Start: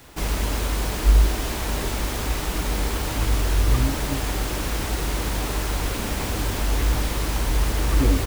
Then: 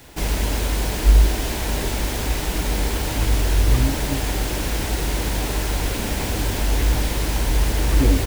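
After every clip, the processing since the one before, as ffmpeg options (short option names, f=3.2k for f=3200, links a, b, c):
-af "equalizer=f=1.2k:w=4:g=-6.5,volume=2.5dB"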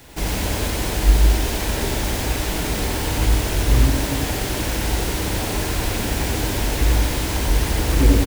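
-af "aecho=1:1:91:0.708"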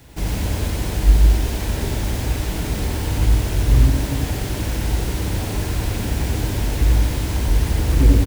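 -af "equalizer=f=91:w=0.45:g=9,volume=-5dB"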